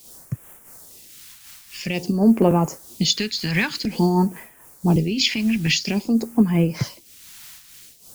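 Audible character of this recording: a quantiser's noise floor 8-bit, dither triangular; phasing stages 2, 0.5 Hz, lowest notch 440–4200 Hz; random flutter of the level

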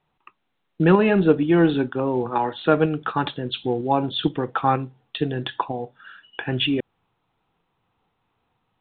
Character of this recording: tremolo saw up 2.1 Hz, depth 35%; µ-law

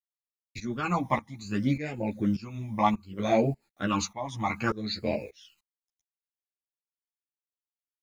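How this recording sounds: a quantiser's noise floor 12-bit, dither none; phasing stages 12, 0.64 Hz, lowest notch 450–1100 Hz; tremolo saw up 1.7 Hz, depth 90%; a shimmering, thickened sound

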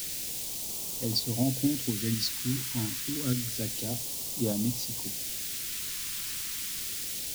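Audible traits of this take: tremolo saw up 4.2 Hz, depth 40%; a quantiser's noise floor 6-bit, dither triangular; phasing stages 2, 0.28 Hz, lowest notch 640–1500 Hz

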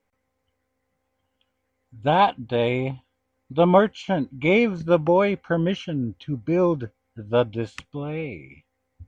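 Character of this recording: noise floor -76 dBFS; spectral tilt -5.5 dB/octave

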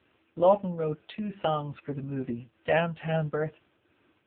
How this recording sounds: tremolo triangle 2.3 Hz, depth 50%; AMR-NB

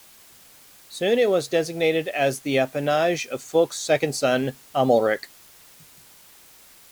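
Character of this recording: a quantiser's noise floor 8-bit, dither triangular; Vorbis

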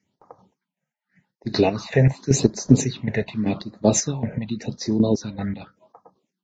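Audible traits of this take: phasing stages 6, 0.87 Hz, lowest notch 300–2800 Hz; chopped level 2.6 Hz, depth 65%, duty 40%; Vorbis

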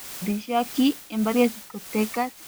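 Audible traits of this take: a quantiser's noise floor 6-bit, dither triangular; tremolo triangle 1.6 Hz, depth 80%

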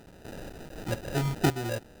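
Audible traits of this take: a quantiser's noise floor 8-bit, dither triangular; random-step tremolo 4 Hz, depth 80%; aliases and images of a low sample rate 1.1 kHz, jitter 0%; Vorbis

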